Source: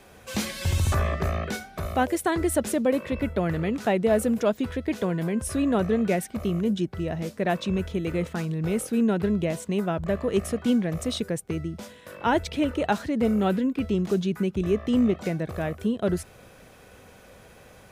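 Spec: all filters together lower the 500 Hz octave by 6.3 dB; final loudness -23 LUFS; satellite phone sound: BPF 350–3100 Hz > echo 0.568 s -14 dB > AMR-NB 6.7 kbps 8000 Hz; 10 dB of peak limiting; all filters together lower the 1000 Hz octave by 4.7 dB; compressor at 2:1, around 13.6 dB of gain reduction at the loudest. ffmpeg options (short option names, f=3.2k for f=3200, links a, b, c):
-af "equalizer=f=500:t=o:g=-5.5,equalizer=f=1k:t=o:g=-4,acompressor=threshold=-46dB:ratio=2,alimiter=level_in=10.5dB:limit=-24dB:level=0:latency=1,volume=-10.5dB,highpass=350,lowpass=3.1k,aecho=1:1:568:0.2,volume=27.5dB" -ar 8000 -c:a libopencore_amrnb -b:a 6700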